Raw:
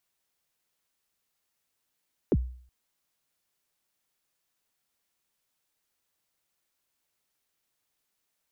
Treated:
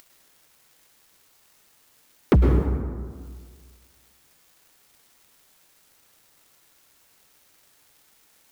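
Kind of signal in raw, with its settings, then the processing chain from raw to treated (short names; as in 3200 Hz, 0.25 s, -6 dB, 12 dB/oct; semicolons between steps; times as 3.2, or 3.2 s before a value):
kick drum length 0.37 s, from 490 Hz, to 62 Hz, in 45 ms, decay 0.52 s, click off, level -17 dB
in parallel at 0 dB: upward compressor, threshold -39 dBFS; on the sum: sample leveller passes 3; plate-style reverb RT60 1.8 s, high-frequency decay 0.45×, pre-delay 95 ms, DRR 2 dB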